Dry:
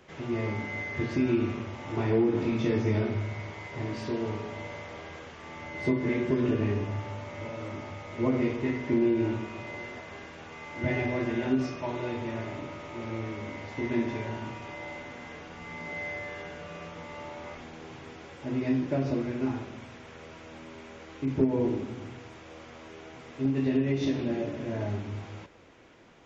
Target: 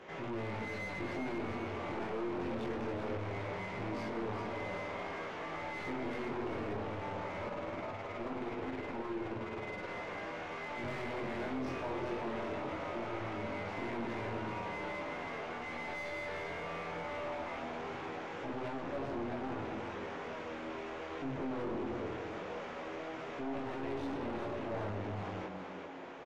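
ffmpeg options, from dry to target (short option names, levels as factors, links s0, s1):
-filter_complex "[0:a]aeval=exprs='(tanh(89.1*val(0)+0.45)-tanh(0.45))/89.1':c=same,flanger=delay=17.5:depth=5.4:speed=0.21,asplit=3[s0][s1][s2];[s0]afade=t=out:st=7.46:d=0.02[s3];[s1]tremolo=f=19:d=0.67,afade=t=in:st=7.46:d=0.02,afade=t=out:st=9.87:d=0.02[s4];[s2]afade=t=in:st=9.87:d=0.02[s5];[s3][s4][s5]amix=inputs=3:normalize=0,asplit=2[s6][s7];[s7]highpass=f=720:p=1,volume=7.08,asoftclip=type=tanh:threshold=0.0168[s8];[s6][s8]amix=inputs=2:normalize=0,lowpass=f=1000:p=1,volume=0.501,asplit=8[s9][s10][s11][s12][s13][s14][s15][s16];[s10]adelay=392,afreqshift=85,volume=0.447[s17];[s11]adelay=784,afreqshift=170,volume=0.254[s18];[s12]adelay=1176,afreqshift=255,volume=0.145[s19];[s13]adelay=1568,afreqshift=340,volume=0.0832[s20];[s14]adelay=1960,afreqshift=425,volume=0.0473[s21];[s15]adelay=2352,afreqshift=510,volume=0.0269[s22];[s16]adelay=2744,afreqshift=595,volume=0.0153[s23];[s9][s17][s18][s19][s20][s21][s22][s23]amix=inputs=8:normalize=0,volume=1.68"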